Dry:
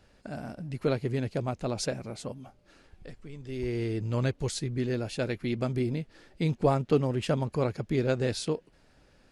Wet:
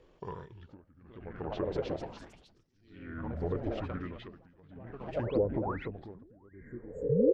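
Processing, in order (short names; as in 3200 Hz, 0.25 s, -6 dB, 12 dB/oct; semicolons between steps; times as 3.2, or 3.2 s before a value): speed glide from 115% -> 139%; compressor 2.5:1, threshold -31 dBFS, peak gain reduction 9 dB; bell 860 Hz +3.5 dB 0.97 oct; frequency-shifting echo 0.3 s, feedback 50%, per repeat -120 Hz, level -8.5 dB; painted sound rise, 7.1–7.67, 220–4700 Hz -26 dBFS; pitch shift -10 st; dynamic EQ 1400 Hz, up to +6 dB, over -49 dBFS, Q 0.92; echoes that change speed 0.512 s, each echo +4 st, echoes 3, each echo -6 dB; treble ducked by the level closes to 500 Hz, closed at -24 dBFS; spectral repair 6.57–7.31, 430–6600 Hz both; tremolo 0.55 Hz, depth 95%; LFO bell 0.56 Hz 480–5700 Hz +12 dB; gain -4 dB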